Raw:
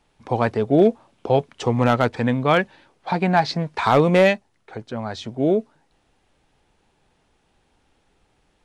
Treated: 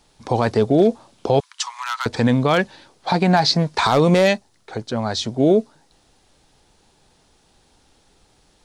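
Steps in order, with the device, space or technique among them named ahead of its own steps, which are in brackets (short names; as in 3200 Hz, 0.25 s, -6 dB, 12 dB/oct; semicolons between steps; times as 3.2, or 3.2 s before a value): over-bright horn tweeter (resonant high shelf 3400 Hz +6.5 dB, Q 1.5; limiter -11.5 dBFS, peak gain reduction 7 dB); 1.4–2.06 Chebyshev high-pass 970 Hz, order 5; gain +5.5 dB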